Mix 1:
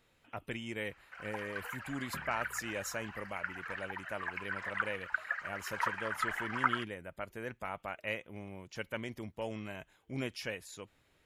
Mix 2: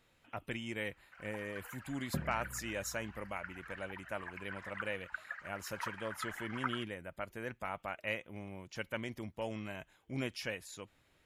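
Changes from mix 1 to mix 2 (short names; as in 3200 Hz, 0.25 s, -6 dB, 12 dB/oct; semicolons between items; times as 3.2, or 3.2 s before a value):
first sound -8.0 dB; second sound +10.5 dB; master: add bell 430 Hz -3 dB 0.25 oct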